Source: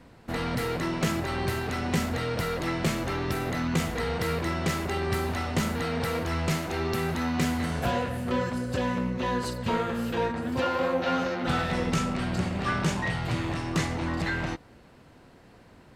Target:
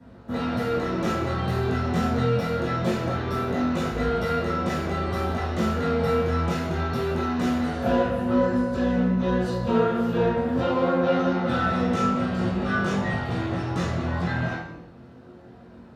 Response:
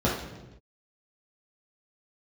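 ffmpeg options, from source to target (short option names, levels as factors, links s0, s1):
-filter_complex "[0:a]lowshelf=f=290:g=-7,acrossover=split=280[s0][s1];[s0]asoftclip=type=tanh:threshold=0.0133[s2];[s2][s1]amix=inputs=2:normalize=0,flanger=delay=20:depth=3.3:speed=0.24[s3];[1:a]atrim=start_sample=2205,afade=t=out:st=0.4:d=0.01,atrim=end_sample=18081[s4];[s3][s4]afir=irnorm=-1:irlink=0,volume=0.422"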